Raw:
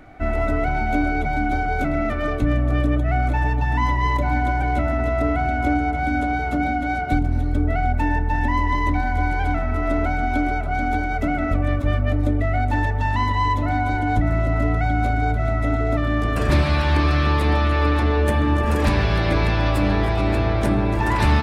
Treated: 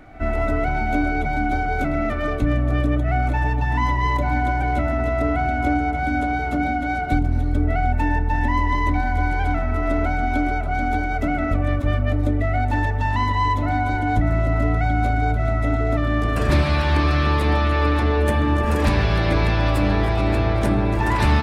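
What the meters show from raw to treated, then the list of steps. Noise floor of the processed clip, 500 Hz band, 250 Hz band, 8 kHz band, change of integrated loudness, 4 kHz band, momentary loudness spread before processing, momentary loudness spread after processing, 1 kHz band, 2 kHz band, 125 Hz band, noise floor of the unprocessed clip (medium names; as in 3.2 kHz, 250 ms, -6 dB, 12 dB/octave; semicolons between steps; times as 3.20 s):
-23 dBFS, 0.0 dB, 0.0 dB, no reading, 0.0 dB, 0.0 dB, 4 LU, 3 LU, 0.0 dB, 0.0 dB, 0.0 dB, -23 dBFS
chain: reverse echo 73 ms -21.5 dB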